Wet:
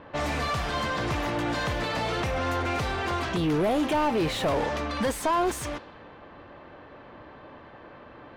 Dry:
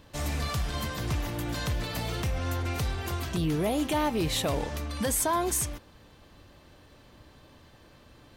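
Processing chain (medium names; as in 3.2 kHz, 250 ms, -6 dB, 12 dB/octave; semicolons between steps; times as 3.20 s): level-controlled noise filter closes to 1.9 kHz, open at -25.5 dBFS; overdrive pedal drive 22 dB, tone 1.3 kHz, clips at -16.5 dBFS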